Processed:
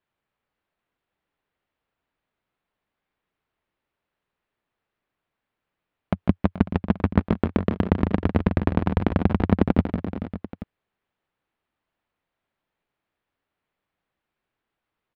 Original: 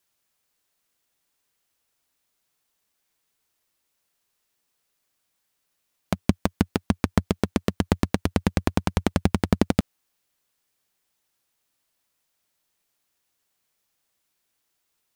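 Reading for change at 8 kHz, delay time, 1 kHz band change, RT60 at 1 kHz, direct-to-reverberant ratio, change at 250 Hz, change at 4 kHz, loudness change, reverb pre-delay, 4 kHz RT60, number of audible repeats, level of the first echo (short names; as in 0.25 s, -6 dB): under -25 dB, 0.15 s, +1.0 dB, none, none, +2.5 dB, -9.0 dB, +1.5 dB, none, none, 4, -8.0 dB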